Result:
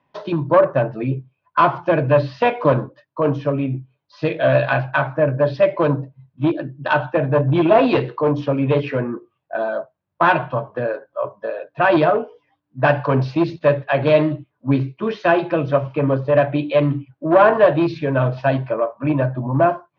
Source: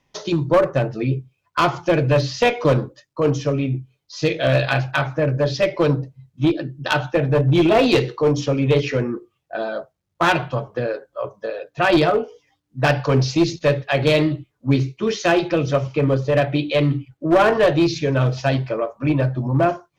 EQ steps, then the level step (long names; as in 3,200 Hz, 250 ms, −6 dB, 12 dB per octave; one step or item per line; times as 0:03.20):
loudspeaker in its box 110–4,100 Hz, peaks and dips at 280 Hz +3 dB, 620 Hz +9 dB, 1,600 Hz +8 dB, 2,600 Hz +4 dB
low-shelf EQ 390 Hz +9 dB
parametric band 1,000 Hz +12 dB 0.65 octaves
−8.0 dB